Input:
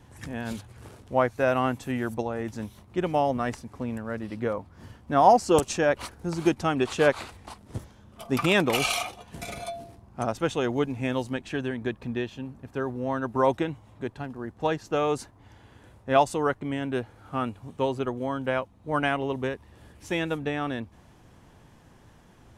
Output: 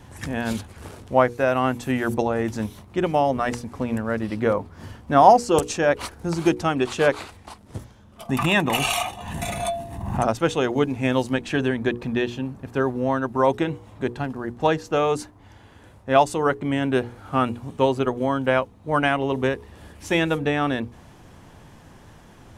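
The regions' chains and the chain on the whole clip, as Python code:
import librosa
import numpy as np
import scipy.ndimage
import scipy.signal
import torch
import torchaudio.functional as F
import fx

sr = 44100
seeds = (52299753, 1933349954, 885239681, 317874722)

y = fx.chain(x, sr, fx.peak_eq(hz=4900.0, db=-10.0, octaves=0.45),
    fx.comb(ms=1.1, depth=0.51),
    fx.pre_swell(db_per_s=57.0), at=(8.29, 10.23))
y = fx.hum_notches(y, sr, base_hz=60, count=8)
y = fx.rider(y, sr, range_db=3, speed_s=0.5)
y = F.gain(torch.from_numpy(y), 5.0).numpy()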